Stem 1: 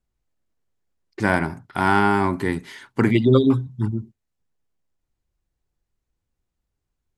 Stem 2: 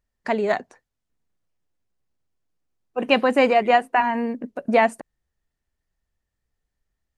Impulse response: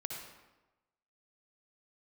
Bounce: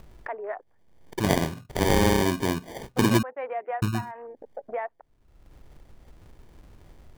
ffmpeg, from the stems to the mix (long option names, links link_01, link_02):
-filter_complex "[0:a]acrusher=samples=33:mix=1:aa=0.000001,volume=-2.5dB,asplit=3[link_01][link_02][link_03];[link_01]atrim=end=3.23,asetpts=PTS-STARTPTS,afade=type=out:start_time=3.226:duration=0.004:curve=hsin[link_04];[link_02]atrim=start=3.23:end=3.82,asetpts=PTS-STARTPTS,volume=0[link_05];[link_03]atrim=start=3.82,asetpts=PTS-STARTPTS,afade=type=in:duration=0.004:curve=hsin[link_06];[link_04][link_05][link_06]concat=n=3:v=0:a=1[link_07];[1:a]highpass=frequency=440:width=0.5412,highpass=frequency=440:width=1.3066,afwtdn=0.0251,lowpass=frequency=2000:width=0.5412,lowpass=frequency=2000:width=1.3066,volume=-17.5dB[link_08];[link_07][link_08]amix=inputs=2:normalize=0,acompressor=mode=upward:threshold=-24dB:ratio=2.5"